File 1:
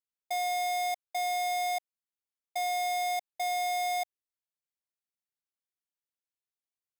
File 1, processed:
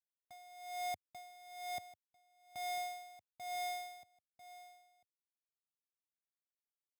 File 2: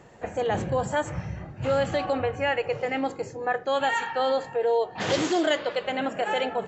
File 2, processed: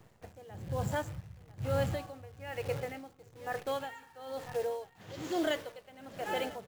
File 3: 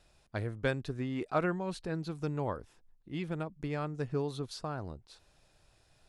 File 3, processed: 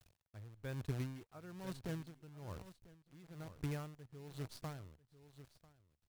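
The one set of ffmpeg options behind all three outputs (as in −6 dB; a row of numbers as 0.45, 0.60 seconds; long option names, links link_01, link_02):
-filter_complex "[0:a]lowshelf=frequency=190:gain=2.5,acrusher=bits=7:dc=4:mix=0:aa=0.000001,equalizer=frequency=93:width=0.97:gain=11,asplit=2[link_01][link_02];[link_02]aecho=0:1:995:0.158[link_03];[link_01][link_03]amix=inputs=2:normalize=0,aeval=exprs='val(0)*pow(10,-19*(0.5-0.5*cos(2*PI*1.1*n/s))/20)':channel_layout=same,volume=-8dB"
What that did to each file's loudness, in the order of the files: −12.5, −10.5, −10.5 LU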